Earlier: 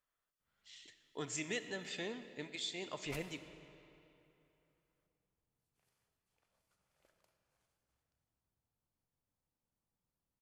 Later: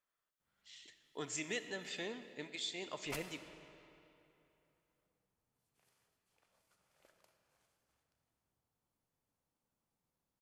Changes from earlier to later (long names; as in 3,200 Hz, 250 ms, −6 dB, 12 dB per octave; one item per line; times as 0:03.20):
background +5.5 dB
master: add low-shelf EQ 120 Hz −9.5 dB